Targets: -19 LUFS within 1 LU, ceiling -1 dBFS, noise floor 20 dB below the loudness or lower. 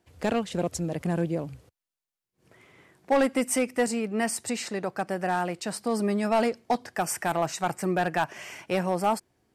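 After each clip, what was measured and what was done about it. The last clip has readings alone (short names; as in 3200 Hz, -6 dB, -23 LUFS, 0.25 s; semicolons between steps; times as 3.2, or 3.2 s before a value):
clipped 0.7%; flat tops at -16.5 dBFS; loudness -28.0 LUFS; peak -16.5 dBFS; loudness target -19.0 LUFS
-> clip repair -16.5 dBFS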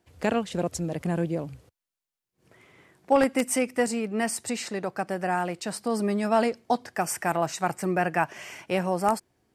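clipped 0.0%; loudness -27.5 LUFS; peak -7.5 dBFS; loudness target -19.0 LUFS
-> gain +8.5 dB; limiter -1 dBFS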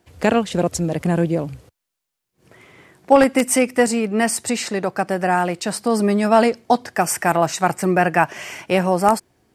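loudness -19.0 LUFS; peak -1.0 dBFS; noise floor -81 dBFS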